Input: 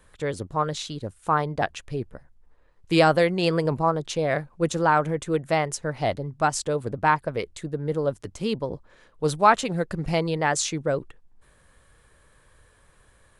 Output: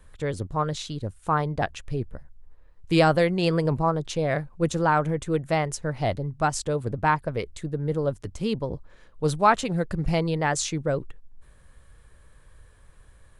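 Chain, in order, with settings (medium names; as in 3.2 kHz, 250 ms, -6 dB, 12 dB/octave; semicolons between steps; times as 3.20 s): bass shelf 120 Hz +11.5 dB; trim -2 dB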